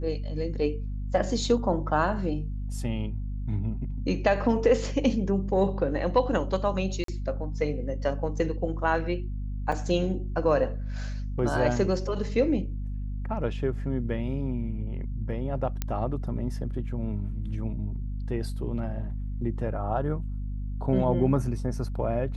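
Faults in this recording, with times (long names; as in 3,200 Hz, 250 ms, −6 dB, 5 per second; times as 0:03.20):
mains hum 50 Hz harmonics 5 −32 dBFS
0:07.04–0:07.08: drop-out 43 ms
0:09.72: drop-out 4.5 ms
0:15.82: click −14 dBFS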